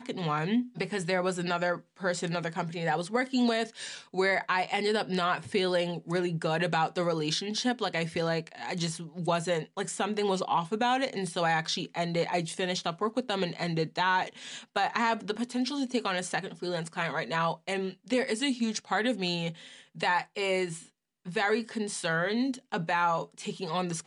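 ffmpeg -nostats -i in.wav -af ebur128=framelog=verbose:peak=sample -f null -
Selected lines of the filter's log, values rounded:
Integrated loudness:
  I:         -30.1 LUFS
  Threshold: -40.2 LUFS
Loudness range:
  LRA:         2.1 LU
  Threshold: -50.1 LUFS
  LRA low:   -31.0 LUFS
  LRA high:  -28.9 LUFS
Sample peak:
  Peak:      -11.6 dBFS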